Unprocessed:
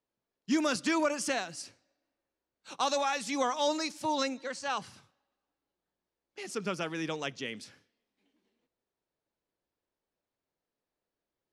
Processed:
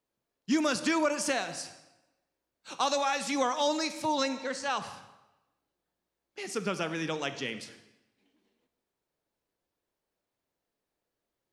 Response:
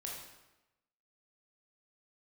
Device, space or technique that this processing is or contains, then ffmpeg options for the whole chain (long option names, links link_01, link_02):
ducked reverb: -filter_complex "[0:a]asplit=3[link_01][link_02][link_03];[1:a]atrim=start_sample=2205[link_04];[link_02][link_04]afir=irnorm=-1:irlink=0[link_05];[link_03]apad=whole_len=508054[link_06];[link_05][link_06]sidechaincompress=threshold=-33dB:ratio=8:attack=39:release=227,volume=-3.5dB[link_07];[link_01][link_07]amix=inputs=2:normalize=0"